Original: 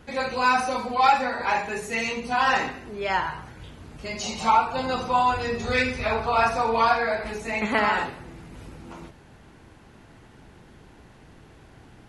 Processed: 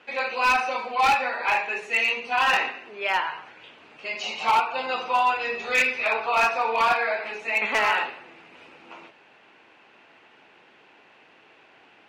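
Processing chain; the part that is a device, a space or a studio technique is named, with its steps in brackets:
megaphone (band-pass filter 490–3,900 Hz; parametric band 2,600 Hz +10 dB 0.47 octaves; hard clipping −15 dBFS, distortion −15 dB)

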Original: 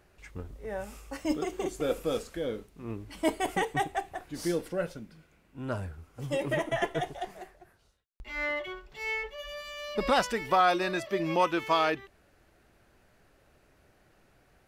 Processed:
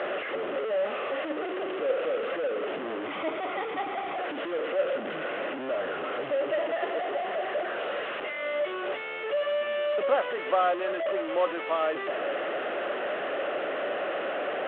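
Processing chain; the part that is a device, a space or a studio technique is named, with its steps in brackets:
digital answering machine (band-pass filter 330–3,100 Hz; linear delta modulator 16 kbit/s, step −23.5 dBFS; loudspeaker in its box 380–3,200 Hz, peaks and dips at 570 Hz +7 dB, 930 Hz −9 dB, 1,600 Hz −4 dB, 2,300 Hz −8 dB)
0:03.06–0:04.16: comb filter 0.9 ms, depth 44%

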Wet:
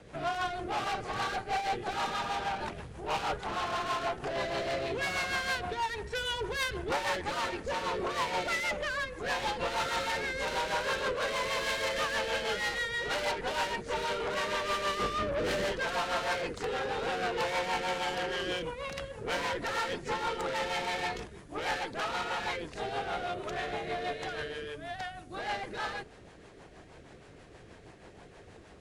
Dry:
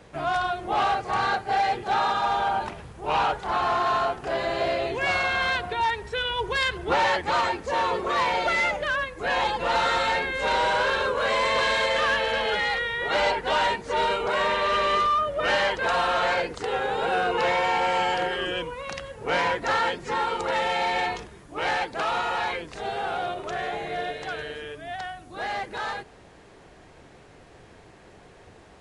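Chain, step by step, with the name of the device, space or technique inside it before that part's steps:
0:14.99–0:15.72: low shelf with overshoot 580 Hz +12 dB, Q 1.5
overdriven rotary cabinet (tube saturation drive 29 dB, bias 0.5; rotating-speaker cabinet horn 6.3 Hz)
level +2 dB

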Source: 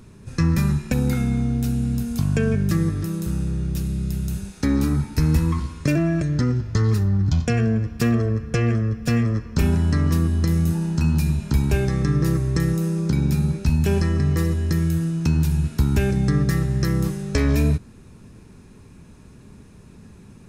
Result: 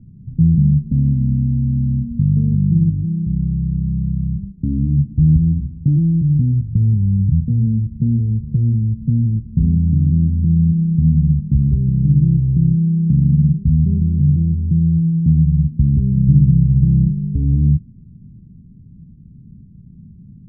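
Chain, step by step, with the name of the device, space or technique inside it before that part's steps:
0:16.27–0:17.28: low-shelf EQ 69 Hz +9 dB
the neighbour's flat through the wall (low-pass filter 230 Hz 24 dB per octave; parametric band 150 Hz +7 dB 0.8 octaves)
level +2 dB

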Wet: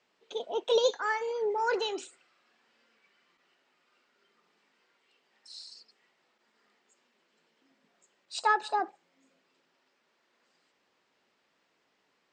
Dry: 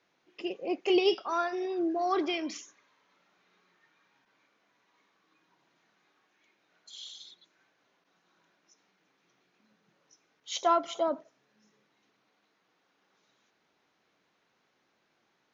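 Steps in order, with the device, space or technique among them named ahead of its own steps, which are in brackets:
nightcore (speed change +26%)
low-pass filter 6,700 Hz 12 dB per octave

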